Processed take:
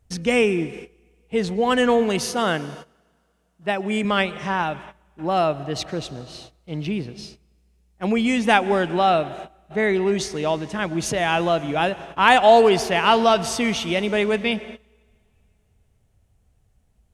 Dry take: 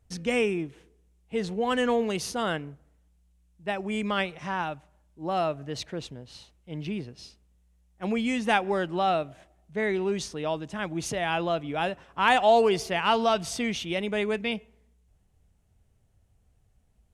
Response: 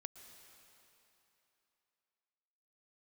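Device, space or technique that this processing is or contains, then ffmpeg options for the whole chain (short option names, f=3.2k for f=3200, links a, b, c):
keyed gated reverb: -filter_complex "[0:a]asettb=1/sr,asplit=3[a][b][c];[a]atrim=end=2.254[d];[b]atrim=start=2.25:end=4.05,asetpts=PTS-STARTPTS,afade=t=in:d=0.004:c=qsin,afade=t=out:st=1.796:d=0.004:c=qsin,highpass=110[e];[c]atrim=start=4.046[f];[d][e]acrossfade=d=0.004:c1=hsin:c2=qsin[g];[g][f]acrossfade=d=0.004:c1=qsin:c2=hsin,asplit=3[h][i][j];[1:a]atrim=start_sample=2205[k];[i][k]afir=irnorm=-1:irlink=0[l];[j]apad=whole_len=755788[m];[l][m]sidechaingate=range=-20dB:threshold=-52dB:ratio=16:detection=peak,volume=2dB[n];[h][n]amix=inputs=2:normalize=0,volume=2.5dB"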